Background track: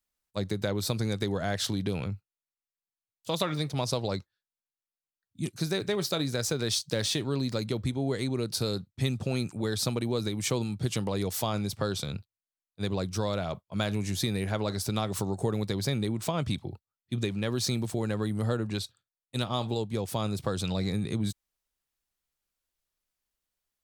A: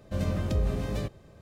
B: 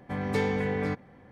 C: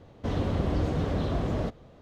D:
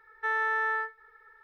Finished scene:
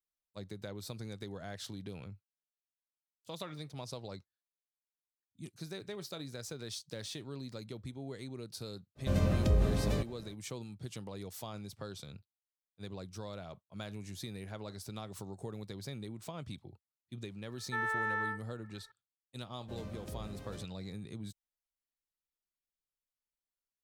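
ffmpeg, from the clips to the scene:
-filter_complex "[1:a]asplit=2[a][b];[0:a]volume=-14dB[c];[b]lowshelf=f=100:g=-8[d];[a]atrim=end=1.41,asetpts=PTS-STARTPTS,volume=-0.5dB,afade=t=in:d=0.05,afade=t=out:st=1.36:d=0.05,adelay=8950[e];[4:a]atrim=end=1.43,asetpts=PTS-STARTPTS,volume=-6dB,afade=t=in:d=0.004:c=hsin,afade=t=out:st=1.426:d=0.004:c=hsin,adelay=17490[f];[d]atrim=end=1.41,asetpts=PTS-STARTPTS,volume=-14dB,afade=t=in:d=0.004:c=hsin,afade=t=out:st=1.406:d=0.004:c=hsin,adelay=19570[g];[c][e][f][g]amix=inputs=4:normalize=0"

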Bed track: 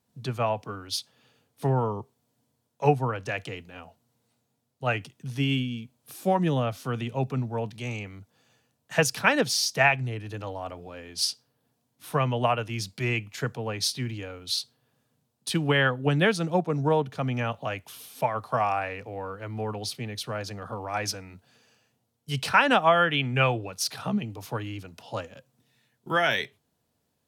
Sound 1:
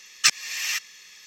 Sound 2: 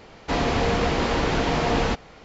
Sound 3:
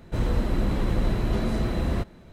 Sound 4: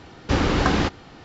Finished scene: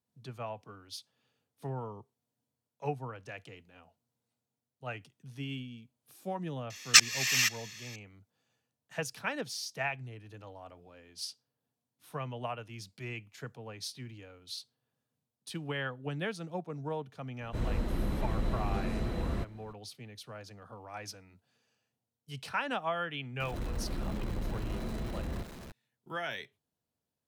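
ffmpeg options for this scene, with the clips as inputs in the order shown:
-filter_complex "[3:a]asplit=2[a][b];[0:a]volume=-13.5dB[c];[b]aeval=exprs='val(0)+0.5*0.0376*sgn(val(0))':c=same[d];[1:a]atrim=end=1.26,asetpts=PTS-STARTPTS,afade=t=in:d=0.004:c=hsin,afade=t=out:st=1.256:d=0.004:c=hsin,adelay=6700[e];[a]atrim=end=2.32,asetpts=PTS-STARTPTS,volume=-8dB,afade=t=in:d=0.004:c=hsin,afade=t=out:st=2.316:d=0.004:c=hsin,adelay=17410[f];[d]atrim=end=2.32,asetpts=PTS-STARTPTS,volume=-13.5dB,afade=t=in:d=0.004:c=hsin,afade=t=out:st=2.316:d=0.004:c=hsin,adelay=1031940S[g];[c][e][f][g]amix=inputs=4:normalize=0"

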